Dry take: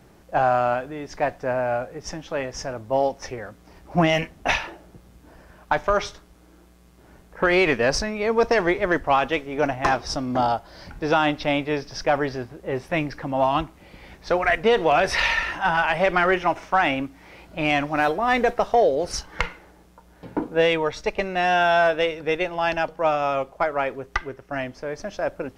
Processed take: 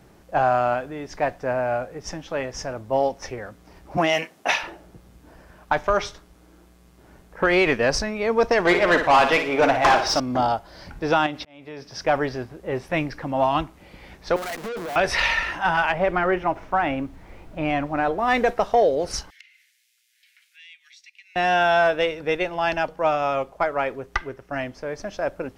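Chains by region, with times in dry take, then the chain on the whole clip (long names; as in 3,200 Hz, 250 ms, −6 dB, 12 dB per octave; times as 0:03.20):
0:03.97–0:04.62: high-pass filter 110 Hz 24 dB per octave + bass and treble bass −12 dB, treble +3 dB
0:08.65–0:10.20: notch filter 1,800 Hz, Q 19 + mid-hump overdrive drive 18 dB, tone 3,900 Hz, clips at −9 dBFS + flutter between parallel walls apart 9.9 metres, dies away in 0.44 s
0:11.26–0:12.04: high-pass filter 77 Hz + downward compressor, threshold −25 dBFS + volume swells 635 ms
0:14.36–0:14.96: each half-wave held at its own peak + Chebyshev high-pass filter 180 Hz, order 4 + tube saturation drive 29 dB, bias 0.45
0:15.91–0:18.17: low-pass filter 1,200 Hz 6 dB per octave + background noise brown −43 dBFS
0:19.30–0:21.36: Butterworth high-pass 2,000 Hz 48 dB per octave + downward compressor 2.5 to 1, threshold −53 dBFS
whole clip: no processing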